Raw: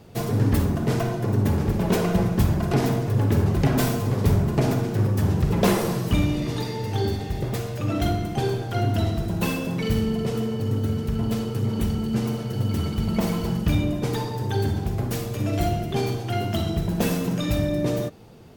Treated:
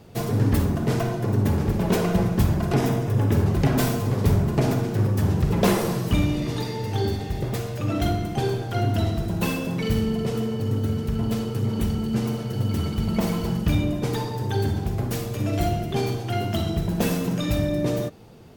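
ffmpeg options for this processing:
-filter_complex "[0:a]asettb=1/sr,asplit=3[s0][s1][s2];[s0]atrim=end=2.764[s3];[s1]atrim=start=2.76:end=3.35,asetpts=PTS-STARTPTS,afade=t=in:d=0.004:c=qsin,afade=t=out:st=0.586:d=0.004:c=qsin,bandreject=f=4300:w=8.3[s4];[s2]atrim=start=3.346[s5];[s3][s4]acrossfade=d=0.004:c1=hsin:c2=qsin[s6];[s6][s5]acrossfade=d=0.004:c1=qsin:c2=hsin"

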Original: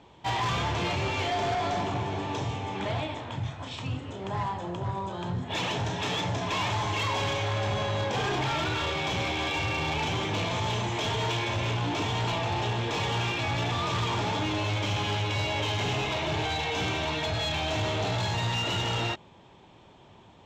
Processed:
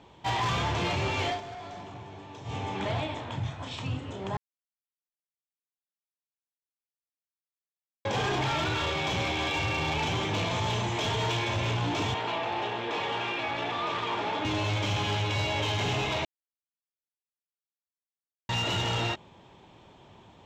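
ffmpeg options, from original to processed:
-filter_complex "[0:a]asettb=1/sr,asplit=3[s0][s1][s2];[s0]atrim=end=12.144[s3];[s1]atrim=start=12.14:end=14.45,asetpts=PTS-STARTPTS,afade=t=in:d=0.004:c=qsin,afade=t=out:st=2.306:d=0.004:c=qsin,acrossover=split=240 3800:gain=0.126 1 0.2[s4][s5][s6];[s4][s5][s6]amix=inputs=3:normalize=0[s7];[s2]atrim=start=14.446[s8];[s3][s7]acrossfade=d=0.004:c1=hsin:c2=qsin[s9];[s9][s8]acrossfade=d=0.004:c1=qsin:c2=hsin,asplit=7[s10][s11][s12][s13][s14][s15][s16];[s10]atrim=end=1.41,asetpts=PTS-STARTPTS,afade=t=out:st=1.29:d=0.12:silence=0.223872[s17];[s11]atrim=start=1.41:end=2.44,asetpts=PTS-STARTPTS,volume=0.224[s18];[s12]atrim=start=2.44:end=4.37,asetpts=PTS-STARTPTS,afade=t=in:d=0.12:silence=0.223872,afade=t=out:st=1.926:d=0.004:c=hsin[s19];[s13]atrim=start=4.37:end=8.05,asetpts=PTS-STARTPTS,volume=0[s20];[s14]atrim=start=8.05:end=16.25,asetpts=PTS-STARTPTS,afade=t=in:d=0.004:c=hsin,afade=t=out:st=8.196:d=0.004:c=hsin[s21];[s15]atrim=start=16.25:end=18.49,asetpts=PTS-STARTPTS,volume=0[s22];[s16]atrim=start=18.49,asetpts=PTS-STARTPTS,afade=t=in:d=0.004:c=hsin[s23];[s17][s18][s19][s20][s21][s22][s23]concat=n=7:v=0:a=1"

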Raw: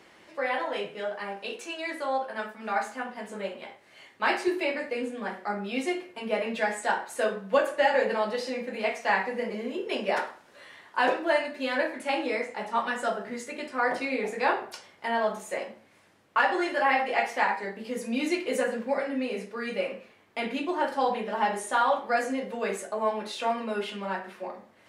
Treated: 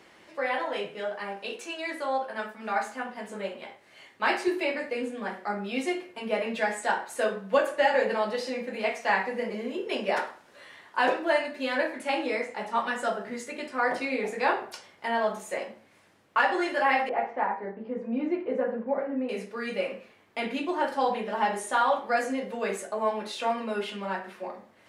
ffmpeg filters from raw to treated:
-filter_complex "[0:a]asettb=1/sr,asplit=3[s0][s1][s2];[s0]atrim=end=17.094[s3];[s1]atrim=start=17.09:end=19.29,asetpts=PTS-STARTPTS,afade=t=in:d=0.004:c=qsin,afade=t=out:st=2.196:d=0.004:c=qsin,lowpass=1100[s4];[s2]atrim=start=19.286[s5];[s3][s4]acrossfade=d=0.004:c1=hsin:c2=qsin[s6];[s6][s5]acrossfade=d=0.004:c1=qsin:c2=hsin"

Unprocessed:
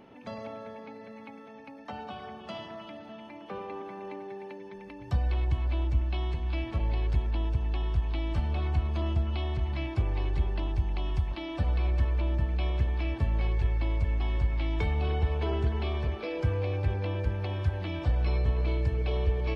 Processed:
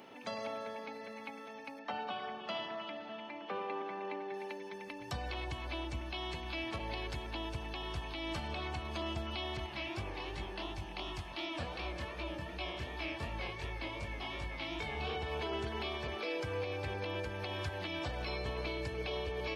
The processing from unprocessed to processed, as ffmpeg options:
-filter_complex "[0:a]asettb=1/sr,asplit=3[s0][s1][s2];[s0]atrim=end=1.794[s3];[s1]atrim=start=1.79:end=4.34,asetpts=PTS-STARTPTS,afade=t=in:d=0.004:c=qsin,afade=t=out:st=2.546:d=0.004:c=qsin,highpass=100,lowpass=3600[s4];[s2]atrim=start=4.336[s5];[s3][s4]acrossfade=d=0.004:c1=hsin:c2=qsin[s6];[s6][s5]acrossfade=d=0.004:c1=qsin:c2=hsin,asettb=1/sr,asplit=3[s7][s8][s9];[s7]atrim=end=9.664[s10];[s8]atrim=start=9.66:end=15.17,asetpts=PTS-STARTPTS,afade=t=in:d=0.004:c=qsin,afade=t=out:st=5.506:d=0.004:c=qsin,flanger=delay=19:depth=7.4:speed=2.7[s11];[s9]atrim=start=15.166[s12];[s10][s11]acrossfade=d=0.004:c1=hsin:c2=qsin[s13];[s13][s12]acrossfade=d=0.004:c1=qsin:c2=hsin,highpass=f=420:p=1,highshelf=f=3400:g=9.5,alimiter=level_in=2:limit=0.0631:level=0:latency=1:release=175,volume=0.501,volume=1.19"

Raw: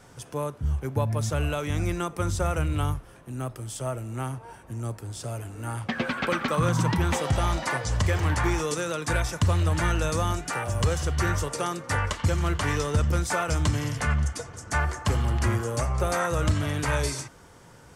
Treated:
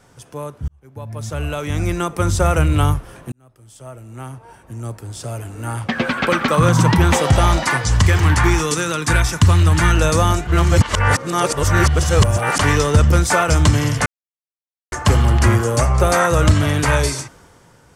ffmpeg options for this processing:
-filter_complex "[0:a]asettb=1/sr,asplit=3[s0][s1][s2];[s0]atrim=end=7.634[s3];[s1]atrim=start=7.63:end=9.97,asetpts=PTS-STARTPTS,afade=t=in:d=0.004:c=qsin,afade=t=out:st=2.336:d=0.004:c=qsin,equalizer=f=570:t=o:w=0.77:g=-8.5[s4];[s2]atrim=start=9.966[s5];[s3][s4]acrossfade=d=0.004:c1=hsin:c2=qsin[s6];[s6][s5]acrossfade=d=0.004:c1=qsin:c2=hsin,asplit=7[s7][s8][s9][s10][s11][s12][s13];[s7]atrim=end=0.68,asetpts=PTS-STARTPTS,afade=t=out:st=0.676:d=0.004:c=hsin[s14];[s8]atrim=start=0.68:end=3.32,asetpts=PTS-STARTPTS,afade=t=in:d=1.89,afade=t=out:st=2.636:d=0.004:c=hsin[s15];[s9]atrim=start=3.32:end=10.472,asetpts=PTS-STARTPTS,afade=t=in:d=3.72[s16];[s10]atrim=start=10.468:end=12.592,asetpts=PTS-STARTPTS,areverse[s17];[s11]atrim=start=12.588:end=14.06,asetpts=PTS-STARTPTS,afade=t=out:st=1.468:d=0.004:c=hsin[s18];[s12]atrim=start=14.06:end=14.92,asetpts=PTS-STARTPTS,volume=0[s19];[s13]atrim=start=14.92,asetpts=PTS-STARTPTS,afade=t=in:d=0.004:c=hsin[s20];[s14][s15][s16]concat=n=3:v=0:a=1[s21];[s21][s17]acrossfade=d=0.004:c1=hsin:c2=hsin[s22];[s18][s19][s20]concat=n=3:v=0:a=1[s23];[s22][s23]acrossfade=d=0.004:c1=hsin:c2=hsin,dynaudnorm=f=110:g=17:m=3.76"

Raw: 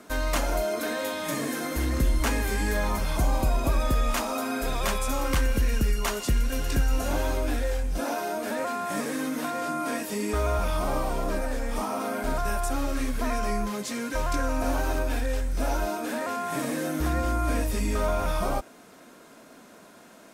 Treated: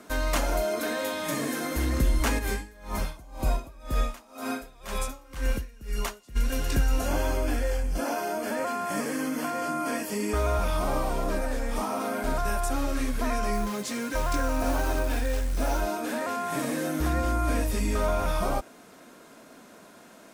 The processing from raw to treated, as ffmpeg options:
-filter_complex "[0:a]asplit=3[s0][s1][s2];[s0]afade=t=out:st=2.38:d=0.02[s3];[s1]aeval=exprs='val(0)*pow(10,-26*(0.5-0.5*cos(2*PI*2*n/s))/20)':c=same,afade=t=in:st=2.38:d=0.02,afade=t=out:st=6.35:d=0.02[s4];[s2]afade=t=in:st=6.35:d=0.02[s5];[s3][s4][s5]amix=inputs=3:normalize=0,asettb=1/sr,asplit=3[s6][s7][s8];[s6]atrim=end=7.064[s9];[s7]atrim=start=7.06:end=10.37,asetpts=PTS-STARTPTS,afade=t=in:d=0.004:c=qsin,afade=t=out:st=3.306:d=0.004:c=qsin,asuperstop=centerf=3800:order=8:qfactor=7.1[s10];[s8]atrim=start=10.366[s11];[s9][s10]acrossfade=d=0.004:c1=hsin:c2=qsin[s12];[s12][s11]acrossfade=d=0.004:c1=qsin:c2=hsin,asettb=1/sr,asplit=3[s13][s14][s15];[s13]atrim=end=13.534[s16];[s14]atrim=start=13.53:end=15.81,asetpts=PTS-STARTPTS,afade=t=in:d=0.004:c=qsin,afade=t=out:st=2.276:d=0.004:c=qsin,acrusher=bits=5:mode=log:mix=0:aa=0.000001[s17];[s15]atrim=start=15.806[s18];[s16][s17]acrossfade=d=0.004:c1=hsin:c2=qsin[s19];[s19][s18]acrossfade=d=0.004:c1=qsin:c2=hsin"

